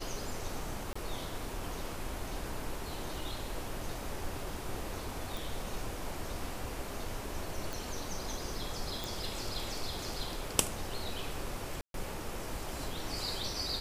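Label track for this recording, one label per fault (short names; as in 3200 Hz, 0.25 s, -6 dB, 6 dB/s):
0.930000	0.950000	gap 25 ms
5.370000	5.370000	pop
7.730000	7.730000	pop
9.040000	9.040000	pop
11.810000	11.940000	gap 0.132 s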